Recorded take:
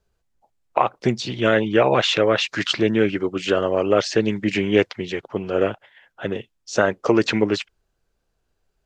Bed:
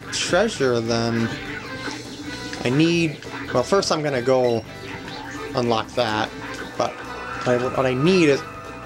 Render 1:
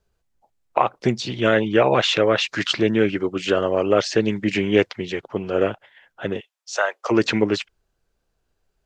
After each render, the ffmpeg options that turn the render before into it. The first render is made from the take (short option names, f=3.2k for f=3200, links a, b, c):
-filter_complex "[0:a]asplit=3[a][b][c];[a]afade=t=out:st=6.39:d=0.02[d];[b]highpass=f=630:w=0.5412,highpass=f=630:w=1.3066,afade=t=in:st=6.39:d=0.02,afade=t=out:st=7.1:d=0.02[e];[c]afade=t=in:st=7.1:d=0.02[f];[d][e][f]amix=inputs=3:normalize=0"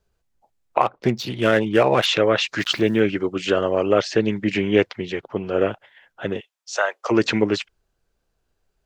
-filter_complex "[0:a]asettb=1/sr,asplit=3[a][b][c];[a]atrim=end=0.814[d];[b]atrim=start=0.81:end=2.06,asetpts=PTS-STARTPTS,afade=t=in:d=0.004:c=qsin,afade=t=out:st=1.246:d=0.004:c=qsin,adynamicsmooth=sensitivity=4:basefreq=3.4k[e];[c]atrim=start=2.056[f];[d][e]acrossfade=d=0.004:c1=hsin:c2=qsin[g];[g][f]acrossfade=d=0.004:c1=qsin:c2=hsin,asettb=1/sr,asplit=3[h][i][j];[h]atrim=end=2.594[k];[i]atrim=start=2.59:end=3,asetpts=PTS-STARTPTS,afade=t=in:d=0.004:c=qsin,afade=t=out:st=0.406:d=0.004:c=qsin,aeval=exprs='val(0)*gte(abs(val(0)),0.00891)':c=same[l];[j]atrim=start=2.996[m];[k][l]acrossfade=d=0.004:c1=hsin:c2=qsin[n];[n][m]acrossfade=d=0.004:c1=qsin:c2=hsin,asettb=1/sr,asplit=3[o][p][q];[o]atrim=end=3.984[r];[p]atrim=start=3.98:end=5.7,asetpts=PTS-STARTPTS,afade=t=in:d=0.004:c=qsin,afade=t=out:st=1.716:d=0.004:c=qsin,equalizer=f=7.6k:w=0.72:g=-4.5[s];[q]atrim=start=5.696[t];[r][s]acrossfade=d=0.004:c1=hsin:c2=qsin[u];[u][t]acrossfade=d=0.004:c1=qsin:c2=hsin"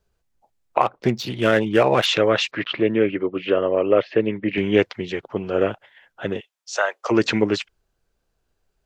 -filter_complex "[0:a]asettb=1/sr,asplit=3[a][b][c];[a]atrim=end=2.514[d];[b]atrim=start=2.51:end=4.58,asetpts=PTS-STARTPTS,afade=t=in:d=0.004:c=qsin,afade=t=out:st=2.066:d=0.004:c=qsin,highpass=120,equalizer=f=200:t=q:w=4:g=-4,equalizer=f=520:t=q:w=4:g=3,equalizer=f=810:t=q:w=4:g=-5,equalizer=f=1.5k:t=q:w=4:g=-6,lowpass=f=2.8k:w=0.5412,lowpass=f=2.8k:w=1.3066[e];[c]atrim=start=4.576[f];[d][e]acrossfade=d=0.004:c1=hsin:c2=qsin[g];[g][f]acrossfade=d=0.004:c1=qsin:c2=hsin"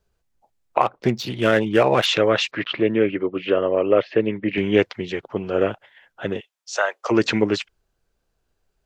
-af anull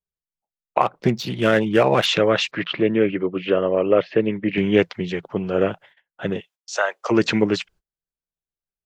-af "equalizer=f=170:t=o:w=0.35:g=9.5,agate=range=-27dB:threshold=-47dB:ratio=16:detection=peak"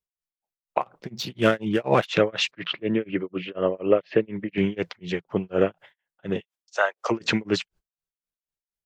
-af "tremolo=f=4.1:d=0.99"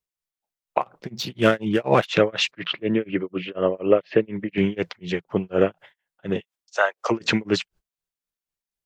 -af "volume=2dB"